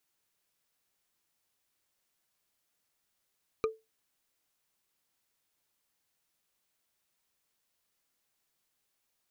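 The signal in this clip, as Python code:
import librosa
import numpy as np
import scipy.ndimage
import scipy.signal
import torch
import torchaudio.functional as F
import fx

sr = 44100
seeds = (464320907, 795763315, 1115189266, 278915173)

y = fx.strike_wood(sr, length_s=0.45, level_db=-22.5, body='bar', hz=442.0, decay_s=0.22, tilt_db=5.0, modes=5)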